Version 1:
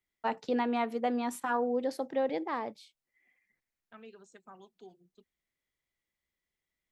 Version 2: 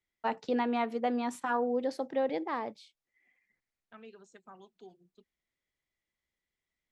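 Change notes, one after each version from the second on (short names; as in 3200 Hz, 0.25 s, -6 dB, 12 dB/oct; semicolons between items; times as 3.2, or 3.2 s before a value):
master: add LPF 8000 Hz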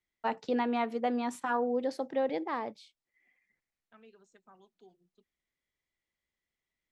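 second voice -6.5 dB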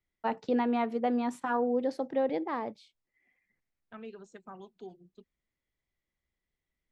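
second voice +11.0 dB; master: add tilt -1.5 dB/oct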